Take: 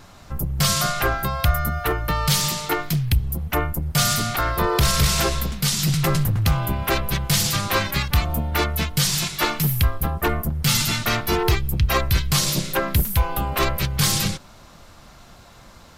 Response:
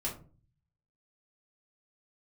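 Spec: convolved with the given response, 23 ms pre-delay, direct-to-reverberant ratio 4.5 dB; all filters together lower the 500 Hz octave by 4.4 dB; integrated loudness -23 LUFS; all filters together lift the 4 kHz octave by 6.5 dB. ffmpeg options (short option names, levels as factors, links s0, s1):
-filter_complex "[0:a]equalizer=f=500:t=o:g=-6,equalizer=f=4000:t=o:g=8,asplit=2[s0][s1];[1:a]atrim=start_sample=2205,adelay=23[s2];[s1][s2]afir=irnorm=-1:irlink=0,volume=0.422[s3];[s0][s3]amix=inputs=2:normalize=0,volume=0.531"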